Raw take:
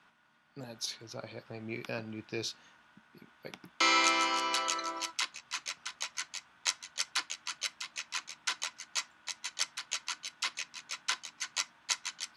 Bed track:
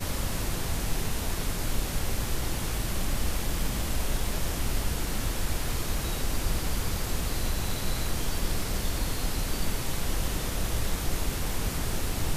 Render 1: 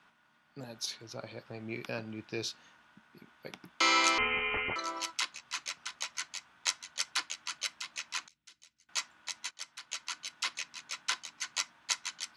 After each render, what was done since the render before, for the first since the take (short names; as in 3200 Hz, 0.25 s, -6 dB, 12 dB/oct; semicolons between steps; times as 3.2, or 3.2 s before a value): 4.18–4.76 inverted band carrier 3400 Hz; 8.28–8.89 passive tone stack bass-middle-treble 10-0-1; 9.51–10.24 fade in, from -15 dB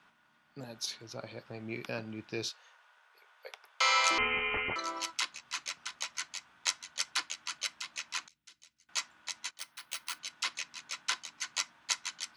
2.49–4.11 elliptic high-pass 460 Hz; 9.58–10.19 careless resampling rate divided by 3×, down filtered, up hold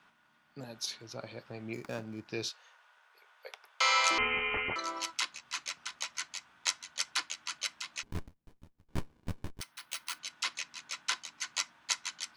1.73–2.28 median filter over 15 samples; 8.03–9.61 running maximum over 65 samples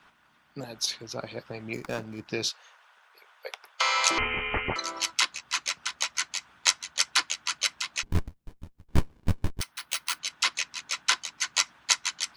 harmonic-percussive split percussive +9 dB; low shelf 88 Hz +8 dB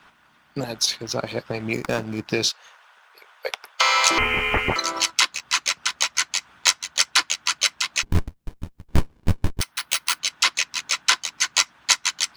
in parallel at +3 dB: compressor, threshold -34 dBFS, peak gain reduction 19 dB; on the sum: sample leveller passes 1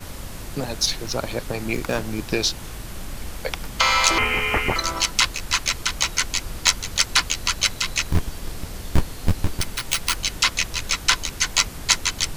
add bed track -4.5 dB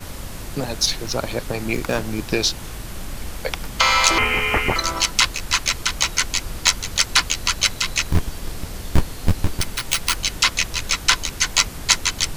gain +2 dB; limiter -1 dBFS, peak gain reduction 1.5 dB